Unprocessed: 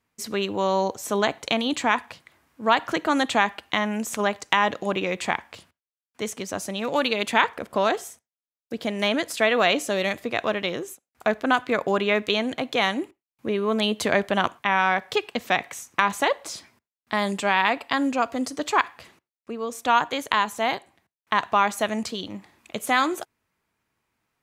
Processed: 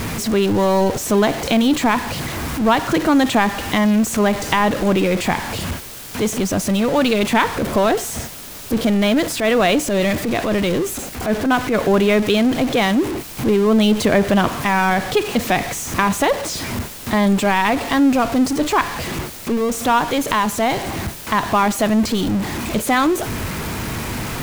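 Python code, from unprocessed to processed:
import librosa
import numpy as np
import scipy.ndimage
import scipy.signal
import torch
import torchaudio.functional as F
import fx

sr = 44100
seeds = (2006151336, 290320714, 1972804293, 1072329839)

y = x + 0.5 * 10.0 ** (-23.0 / 20.0) * np.sign(x)
y = fx.low_shelf(y, sr, hz=400.0, db=11.0)
y = fx.transient(y, sr, attack_db=-8, sustain_db=0, at=(8.96, 11.75))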